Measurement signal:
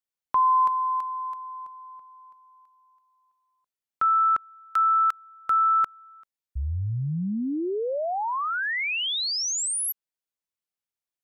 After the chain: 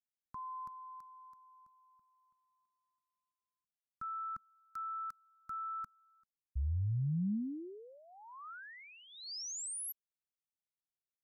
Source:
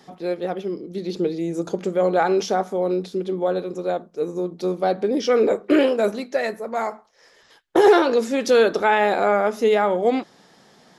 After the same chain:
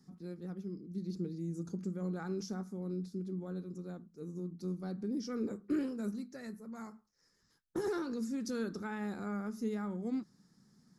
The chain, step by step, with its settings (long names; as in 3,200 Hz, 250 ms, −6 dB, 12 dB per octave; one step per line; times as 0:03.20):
drawn EQ curve 210 Hz 0 dB, 640 Hz −27 dB, 1,300 Hz −14 dB, 3,200 Hz −26 dB, 4,700 Hz −10 dB, 8,800 Hz −8 dB
level −6 dB